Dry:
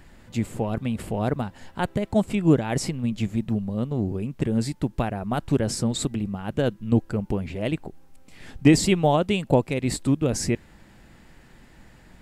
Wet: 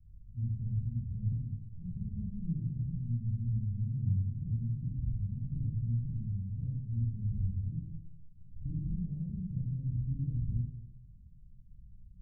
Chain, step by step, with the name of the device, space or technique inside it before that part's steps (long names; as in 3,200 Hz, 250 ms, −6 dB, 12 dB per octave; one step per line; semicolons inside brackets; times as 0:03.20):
club heard from the street (brickwall limiter −12.5 dBFS, peak gain reduction 8.5 dB; low-pass filter 130 Hz 24 dB per octave; convolution reverb RT60 0.90 s, pre-delay 35 ms, DRR −5.5 dB)
level −7.5 dB